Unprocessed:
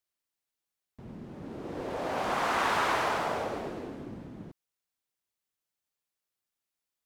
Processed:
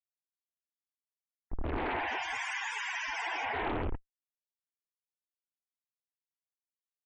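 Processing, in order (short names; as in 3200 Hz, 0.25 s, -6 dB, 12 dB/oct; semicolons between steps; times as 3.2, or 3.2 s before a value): weighting filter ITU-R 468; low-pass opened by the level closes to 2700 Hz, open at -25.5 dBFS; tilt +3.5 dB/oct; notches 50/100/150/200/250/300/350/400 Hz; in parallel at -1.5 dB: compressor 16:1, threshold -32 dBFS, peak gain reduction 15.5 dB; on the sum: Schmitt trigger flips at -33 dBFS; loudest bins only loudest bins 64; fixed phaser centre 840 Hz, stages 8; Doppler distortion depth 0.82 ms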